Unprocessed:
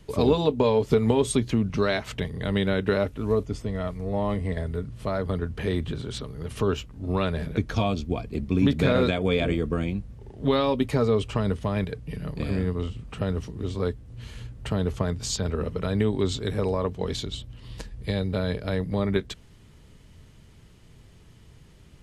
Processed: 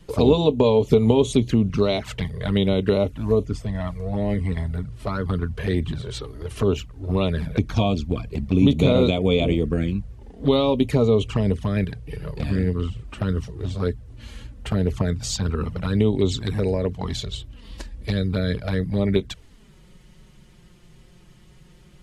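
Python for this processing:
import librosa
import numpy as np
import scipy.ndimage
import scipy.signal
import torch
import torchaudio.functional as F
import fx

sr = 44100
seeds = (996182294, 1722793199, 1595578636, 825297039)

y = fx.env_flanger(x, sr, rest_ms=6.3, full_db=-20.0)
y = y * 10.0 ** (5.0 / 20.0)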